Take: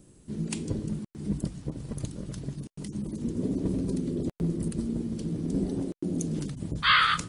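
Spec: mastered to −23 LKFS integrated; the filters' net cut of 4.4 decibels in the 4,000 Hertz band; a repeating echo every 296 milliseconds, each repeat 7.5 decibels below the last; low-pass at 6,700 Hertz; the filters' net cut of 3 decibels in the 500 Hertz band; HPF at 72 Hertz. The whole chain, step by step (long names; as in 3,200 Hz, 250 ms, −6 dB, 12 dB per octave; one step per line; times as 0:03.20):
high-pass filter 72 Hz
low-pass filter 6,700 Hz
parametric band 500 Hz −4.5 dB
parametric band 4,000 Hz −5.5 dB
repeating echo 296 ms, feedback 42%, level −7.5 dB
level +8.5 dB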